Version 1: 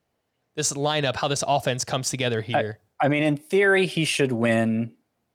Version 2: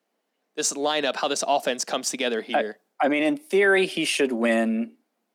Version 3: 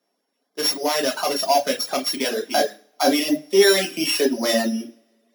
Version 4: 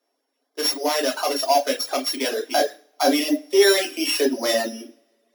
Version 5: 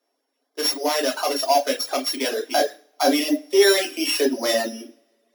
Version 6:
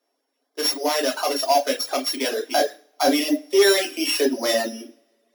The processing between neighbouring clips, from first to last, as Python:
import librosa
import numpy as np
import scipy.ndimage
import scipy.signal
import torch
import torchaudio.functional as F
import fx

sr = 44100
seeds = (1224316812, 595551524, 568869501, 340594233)

y1 = scipy.signal.sosfilt(scipy.signal.butter(8, 200.0, 'highpass', fs=sr, output='sos'), x)
y2 = np.r_[np.sort(y1[:len(y1) // 8 * 8].reshape(-1, 8), axis=1).ravel(), y1[len(y1) // 8 * 8:]]
y2 = fx.rev_double_slope(y2, sr, seeds[0], early_s=0.44, late_s=2.4, knee_db=-28, drr_db=-1.0)
y2 = fx.dereverb_blind(y2, sr, rt60_s=0.9)
y3 = scipy.signal.sosfilt(scipy.signal.ellip(4, 1.0, 40, 260.0, 'highpass', fs=sr, output='sos'), y2)
y4 = y3
y5 = np.clip(y4, -10.0 ** (-9.5 / 20.0), 10.0 ** (-9.5 / 20.0))